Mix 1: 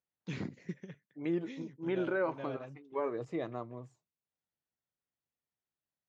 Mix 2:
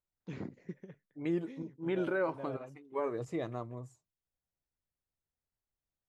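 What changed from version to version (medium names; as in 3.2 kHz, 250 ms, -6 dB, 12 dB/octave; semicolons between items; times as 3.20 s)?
first voice: add band-pass filter 520 Hz, Q 0.58; master: remove band-pass 140–4500 Hz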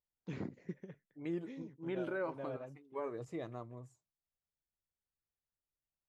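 second voice -6.0 dB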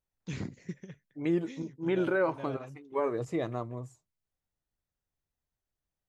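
first voice: remove band-pass filter 520 Hz, Q 0.58; second voice +10.5 dB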